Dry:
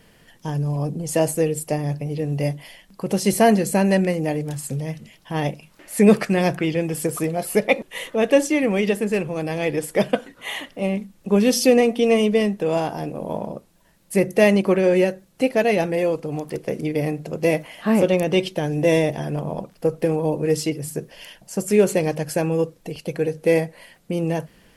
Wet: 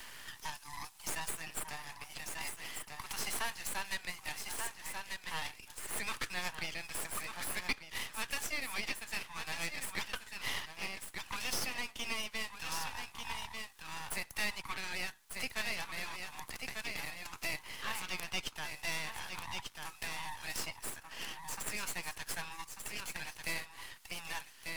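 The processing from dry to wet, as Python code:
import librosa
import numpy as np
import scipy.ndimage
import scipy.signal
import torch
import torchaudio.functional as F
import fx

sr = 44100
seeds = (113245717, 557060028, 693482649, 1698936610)

y = scipy.signal.sosfilt(scipy.signal.butter(12, 870.0, 'highpass', fs=sr, output='sos'), x)
y = y + 10.0 ** (-9.5 / 20.0) * np.pad(y, (int(1192 * sr / 1000.0), 0))[:len(y)]
y = np.maximum(y, 0.0)
y = fx.band_squash(y, sr, depth_pct=70)
y = y * librosa.db_to_amplitude(-4.0)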